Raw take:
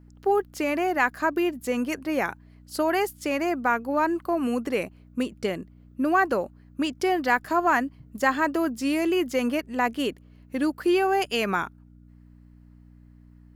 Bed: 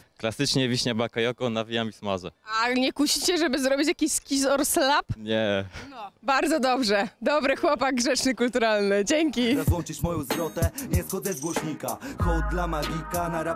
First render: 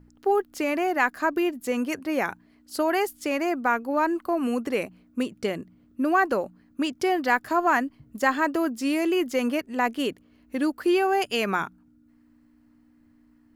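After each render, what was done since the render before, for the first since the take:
hum removal 60 Hz, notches 3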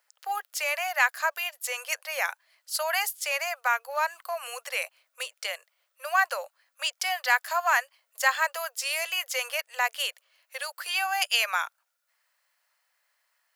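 Butterworth high-pass 520 Hz 72 dB per octave
tilt shelving filter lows −9 dB, about 1,400 Hz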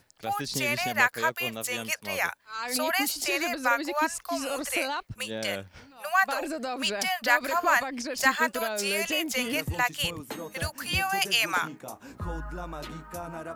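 mix in bed −10 dB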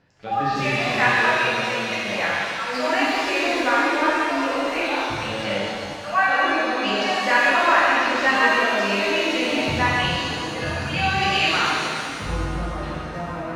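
high-frequency loss of the air 230 metres
reverb with rising layers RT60 2.1 s, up +7 semitones, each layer −8 dB, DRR −8 dB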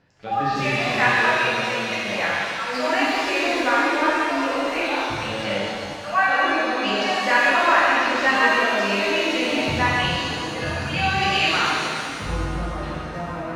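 no processing that can be heard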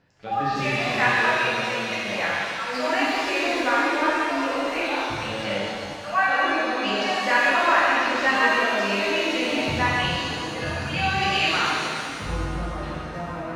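level −2 dB

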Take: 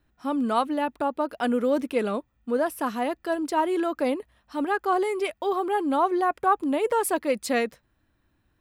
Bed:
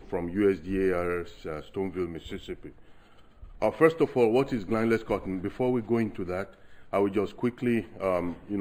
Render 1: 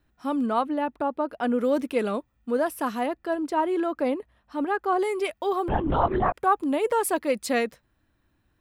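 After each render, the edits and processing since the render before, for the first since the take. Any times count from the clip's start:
0:00.46–0:01.59: high-shelf EQ 3,200 Hz −11 dB
0:03.06–0:04.99: high-shelf EQ 3,200 Hz −9 dB
0:05.68–0:06.34: linear-prediction vocoder at 8 kHz whisper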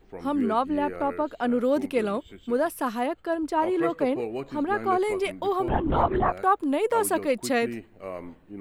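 mix in bed −9 dB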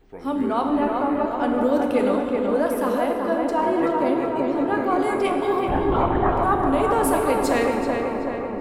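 on a send: feedback echo with a low-pass in the loop 380 ms, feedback 68%, low-pass 2,400 Hz, level −3.5 dB
on the sum: dense smooth reverb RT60 2.6 s, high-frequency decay 0.6×, DRR 3 dB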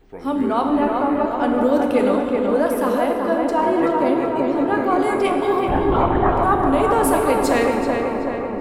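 level +3 dB

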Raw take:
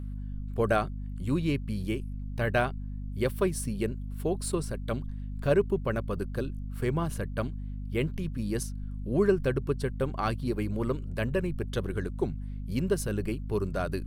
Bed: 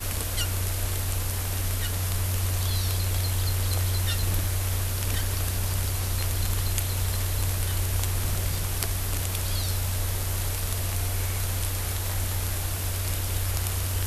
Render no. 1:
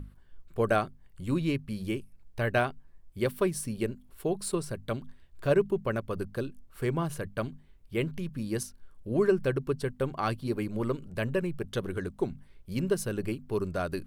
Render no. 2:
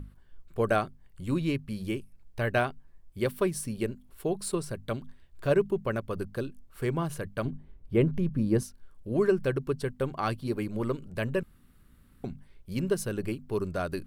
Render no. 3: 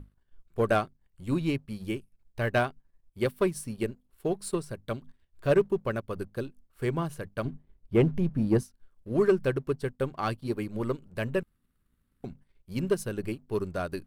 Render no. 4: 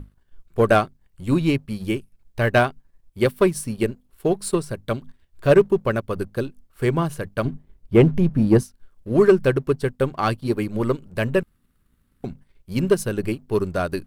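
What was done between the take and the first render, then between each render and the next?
mains-hum notches 50/100/150/200/250 Hz
0:07.45–0:08.63: tilt shelving filter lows +7.5 dB, about 1,500 Hz; 0:11.43–0:12.24: fill with room tone
leveller curve on the samples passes 1; expander for the loud parts 1.5 to 1, over −44 dBFS
level +8.5 dB

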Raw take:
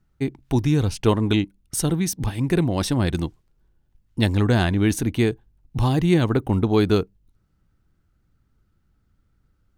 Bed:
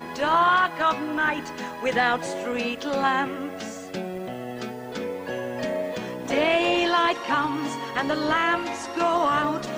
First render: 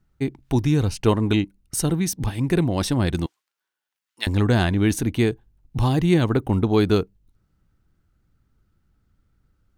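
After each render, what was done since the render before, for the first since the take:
0:00.78–0:02.03: notch filter 3,400 Hz
0:03.26–0:04.27: high-pass filter 1,300 Hz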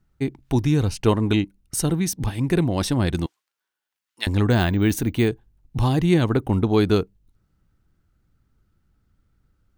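0:04.50–0:05.28: bad sample-rate conversion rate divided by 2×, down none, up hold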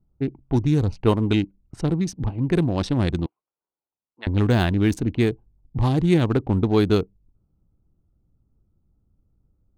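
adaptive Wiener filter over 25 samples
low-pass that shuts in the quiet parts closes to 1,100 Hz, open at −14 dBFS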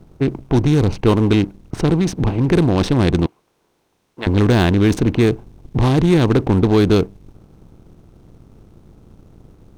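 compressor on every frequency bin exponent 0.6
leveller curve on the samples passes 1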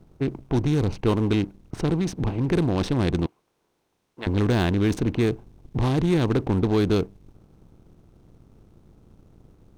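level −7.5 dB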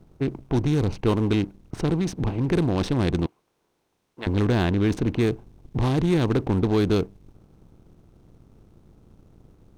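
0:04.45–0:05.03: high-shelf EQ 6,400 Hz −7 dB

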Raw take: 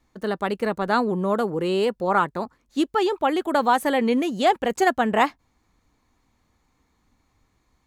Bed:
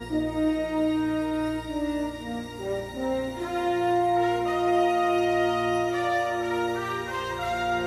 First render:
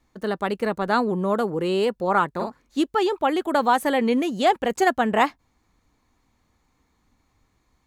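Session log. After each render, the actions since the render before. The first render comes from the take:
0:02.32–0:02.79: double-tracking delay 46 ms −3 dB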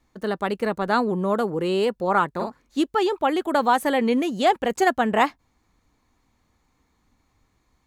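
no processing that can be heard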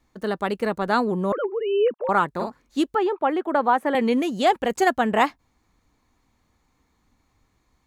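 0:01.32–0:02.09: three sine waves on the formant tracks
0:02.95–0:03.95: three-way crossover with the lows and the highs turned down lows −17 dB, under 190 Hz, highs −17 dB, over 2,400 Hz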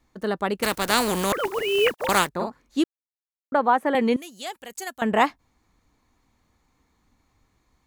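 0:00.62–0:02.27: compressing power law on the bin magnitudes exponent 0.43
0:02.84–0:03.52: silence
0:04.16–0:05.02: first-order pre-emphasis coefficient 0.9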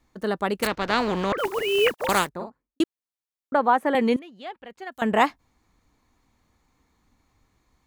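0:00.67–0:01.38: high-frequency loss of the air 200 metres
0:02.03–0:02.80: fade out and dull
0:04.19–0:04.92: high-frequency loss of the air 380 metres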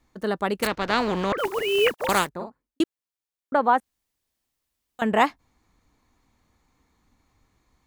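0:03.80–0:04.99: fill with room tone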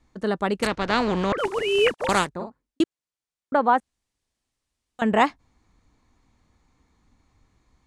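low-pass filter 9,600 Hz 24 dB per octave
low-shelf EQ 240 Hz +4.5 dB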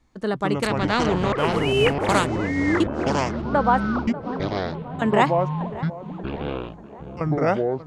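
delay with pitch and tempo change per echo 112 ms, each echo −6 semitones, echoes 3
tape delay 588 ms, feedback 68%, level −14.5 dB, low-pass 1,500 Hz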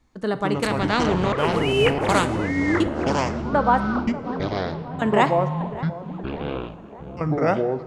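dense smooth reverb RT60 1.1 s, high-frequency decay 0.85×, DRR 11.5 dB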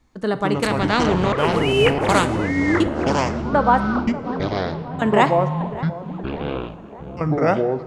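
level +2.5 dB

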